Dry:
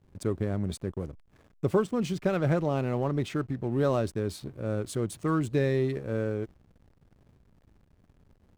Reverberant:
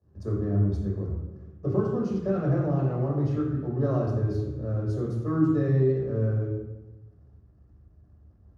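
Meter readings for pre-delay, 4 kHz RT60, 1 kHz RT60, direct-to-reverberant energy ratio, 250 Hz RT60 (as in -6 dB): 3 ms, 0.80 s, 1.0 s, -4.5 dB, 1.4 s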